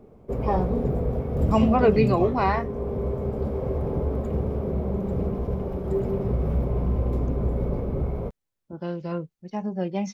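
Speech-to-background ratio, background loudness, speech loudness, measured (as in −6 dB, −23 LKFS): 2.5 dB, −27.0 LKFS, −24.5 LKFS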